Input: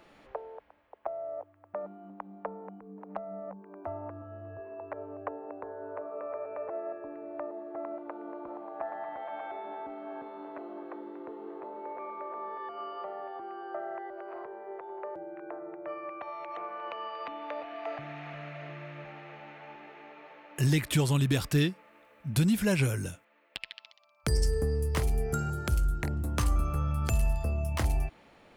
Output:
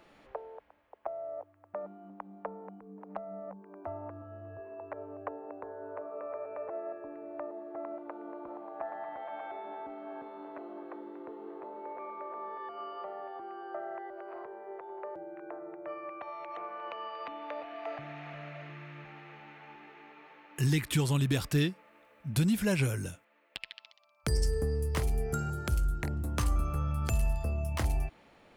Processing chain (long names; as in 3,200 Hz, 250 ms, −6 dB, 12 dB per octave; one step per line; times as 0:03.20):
0:18.62–0:21.05: parametric band 600 Hz −10.5 dB 0.36 octaves
level −2 dB